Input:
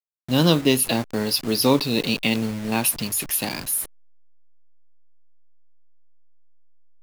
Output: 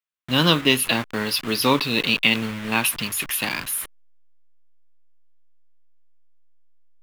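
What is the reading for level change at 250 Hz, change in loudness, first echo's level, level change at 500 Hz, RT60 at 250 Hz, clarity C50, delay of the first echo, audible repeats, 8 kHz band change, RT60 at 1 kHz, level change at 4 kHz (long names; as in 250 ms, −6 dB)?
−2.5 dB, +0.5 dB, no echo audible, −2.5 dB, no reverb audible, no reverb audible, no echo audible, no echo audible, −2.5 dB, no reverb audible, +3.5 dB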